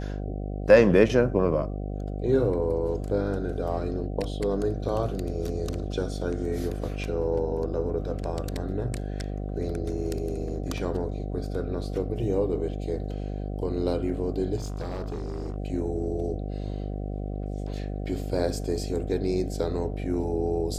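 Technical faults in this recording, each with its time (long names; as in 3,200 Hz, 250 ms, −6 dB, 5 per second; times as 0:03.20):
mains buzz 50 Hz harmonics 15 −32 dBFS
0:14.56–0:15.56: clipping −28.5 dBFS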